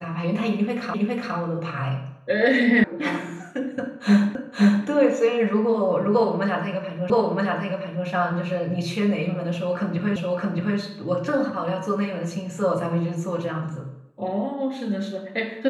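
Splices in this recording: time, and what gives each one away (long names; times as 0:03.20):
0:00.94: the same again, the last 0.41 s
0:02.84: cut off before it has died away
0:04.35: the same again, the last 0.52 s
0:07.10: the same again, the last 0.97 s
0:10.16: the same again, the last 0.62 s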